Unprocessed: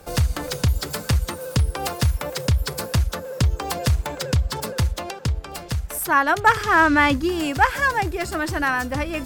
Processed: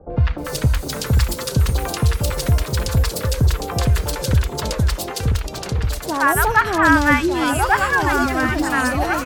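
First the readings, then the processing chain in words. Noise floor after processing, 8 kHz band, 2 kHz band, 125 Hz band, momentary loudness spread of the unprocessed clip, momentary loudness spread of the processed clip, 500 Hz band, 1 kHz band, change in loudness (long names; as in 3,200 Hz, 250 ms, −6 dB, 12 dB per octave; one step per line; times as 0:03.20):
−30 dBFS, +4.0 dB, +2.5 dB, +4.0 dB, 10 LU, 8 LU, +3.0 dB, +1.5 dB, +3.0 dB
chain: delay with pitch and tempo change per echo 453 ms, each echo −2 semitones, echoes 2, each echo −6 dB
three-band delay without the direct sound lows, mids, highs 100/380 ms, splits 850/3,000 Hz
level +3 dB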